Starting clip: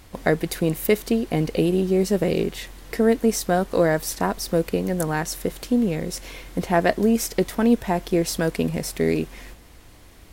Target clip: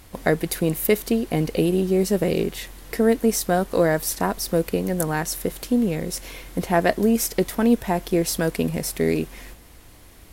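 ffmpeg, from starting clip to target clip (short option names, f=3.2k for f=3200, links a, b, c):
-af "equalizer=f=12k:t=o:w=0.75:g=6"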